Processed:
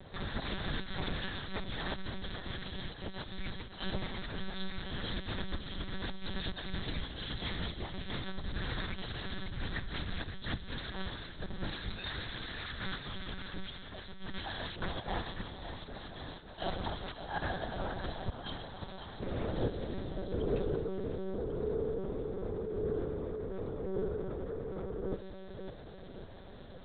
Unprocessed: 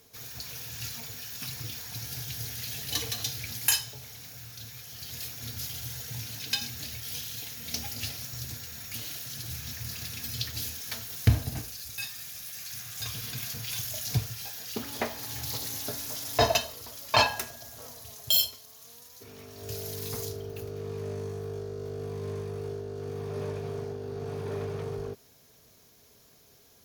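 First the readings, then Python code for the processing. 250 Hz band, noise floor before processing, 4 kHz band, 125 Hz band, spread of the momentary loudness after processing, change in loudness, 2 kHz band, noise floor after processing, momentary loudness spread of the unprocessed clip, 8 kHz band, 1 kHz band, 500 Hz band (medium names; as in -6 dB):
+2.5 dB, -59 dBFS, -8.5 dB, -5.5 dB, 9 LU, -7.0 dB, -3.5 dB, -48 dBFS, 15 LU, under -40 dB, -6.0 dB, -2.0 dB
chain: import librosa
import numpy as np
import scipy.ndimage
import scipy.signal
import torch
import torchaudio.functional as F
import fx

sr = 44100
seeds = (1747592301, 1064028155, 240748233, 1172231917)

p1 = fx.peak_eq(x, sr, hz=2600.0, db=-14.5, octaves=0.41)
p2 = fx.over_compress(p1, sr, threshold_db=-41.0, ratio=-0.5)
p3 = p2 + fx.echo_feedback(p2, sr, ms=549, feedback_pct=57, wet_db=-9.5, dry=0)
p4 = fx.lpc_monotone(p3, sr, seeds[0], pitch_hz=190.0, order=8)
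y = F.gain(torch.from_numpy(p4), 7.0).numpy()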